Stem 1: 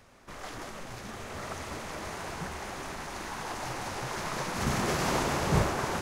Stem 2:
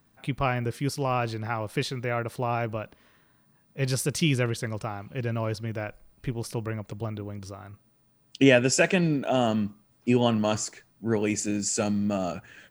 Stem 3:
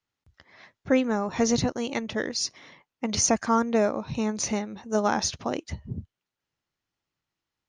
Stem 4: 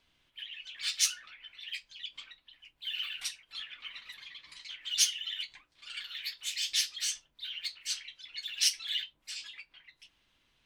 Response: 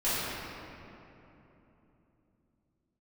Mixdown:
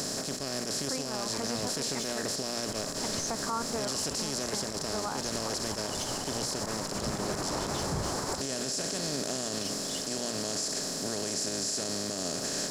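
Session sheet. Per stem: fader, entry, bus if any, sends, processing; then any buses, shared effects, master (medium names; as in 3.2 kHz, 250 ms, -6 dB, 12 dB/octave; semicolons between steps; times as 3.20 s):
-1.5 dB, 2.40 s, no send, low-pass 1.5 kHz
-16.0 dB, 0.00 s, no send, spectral levelling over time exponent 0.2; resonant high shelf 3.4 kHz +9.5 dB, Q 3; hum notches 60/120 Hz
-11.0 dB, 0.00 s, no send, peaking EQ 1.1 kHz +10 dB 1.1 oct
-11.0 dB, 1.00 s, no send, none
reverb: none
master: peak limiter -22.5 dBFS, peak gain reduction 13.5 dB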